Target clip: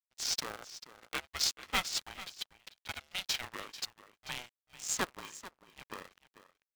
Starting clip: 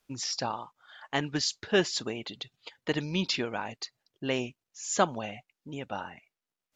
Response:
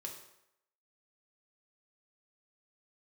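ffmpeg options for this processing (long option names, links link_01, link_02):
-filter_complex "[0:a]highpass=820,highshelf=frequency=6600:gain=10,asplit=2[link_01][link_02];[link_02]aeval=exprs='sgn(val(0))*max(abs(val(0))-0.00299,0)':channel_layout=same,volume=-11dB[link_03];[link_01][link_03]amix=inputs=2:normalize=0,adynamicsmooth=sensitivity=6.5:basefreq=2700,aeval=exprs='sgn(val(0))*max(abs(val(0))-0.00422,0)':channel_layout=same,tremolo=f=2.9:d=0.43,asplit=2[link_04][link_05];[link_05]aecho=0:1:441:0.178[link_06];[link_04][link_06]amix=inputs=2:normalize=0,aeval=exprs='val(0)*sgn(sin(2*PI*370*n/s))':channel_layout=same,volume=-3.5dB"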